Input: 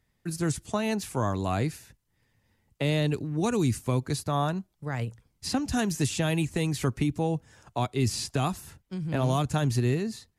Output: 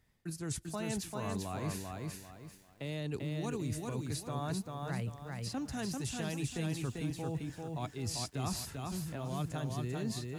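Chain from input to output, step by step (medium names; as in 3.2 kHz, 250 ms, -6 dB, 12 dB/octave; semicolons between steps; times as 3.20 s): reverse; compression 12:1, threshold -35 dBFS, peak gain reduction 15 dB; reverse; bit-crushed delay 393 ms, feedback 35%, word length 11-bit, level -3 dB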